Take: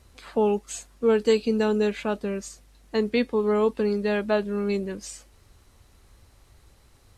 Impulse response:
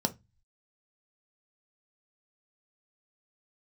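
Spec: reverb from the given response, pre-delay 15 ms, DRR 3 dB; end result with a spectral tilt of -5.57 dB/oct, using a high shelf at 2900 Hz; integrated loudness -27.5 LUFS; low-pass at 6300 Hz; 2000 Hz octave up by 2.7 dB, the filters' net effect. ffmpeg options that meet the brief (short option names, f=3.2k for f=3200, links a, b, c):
-filter_complex "[0:a]lowpass=6.3k,equalizer=f=2k:t=o:g=6,highshelf=f=2.9k:g=-6.5,asplit=2[a][b];[1:a]atrim=start_sample=2205,adelay=15[c];[b][c]afir=irnorm=-1:irlink=0,volume=-9dB[d];[a][d]amix=inputs=2:normalize=0,volume=-8dB"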